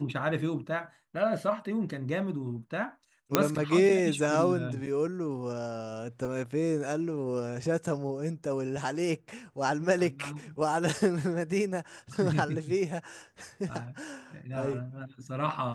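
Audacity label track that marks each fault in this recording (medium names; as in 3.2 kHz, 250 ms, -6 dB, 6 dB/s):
3.350000	3.350000	pop -6 dBFS
6.250000	6.250000	dropout 3.6 ms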